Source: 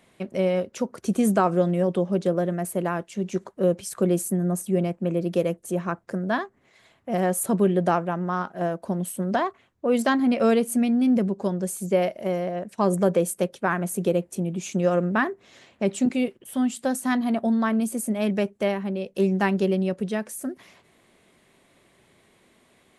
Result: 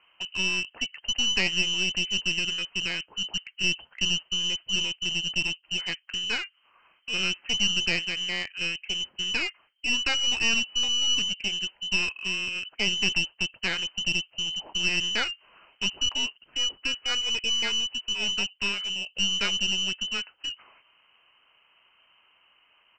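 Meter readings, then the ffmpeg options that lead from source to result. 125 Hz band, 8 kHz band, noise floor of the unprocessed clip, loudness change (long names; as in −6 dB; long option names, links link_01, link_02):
−14.5 dB, +2.5 dB, −62 dBFS, −1.5 dB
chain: -af "lowpass=frequency=2700:width_type=q:width=0.5098,lowpass=frequency=2700:width_type=q:width=0.6013,lowpass=frequency=2700:width_type=q:width=0.9,lowpass=frequency=2700:width_type=q:width=2.563,afreqshift=-3200,aresample=16000,aeval=exprs='clip(val(0),-1,0.0355)':channel_layout=same,aresample=44100,volume=-2dB"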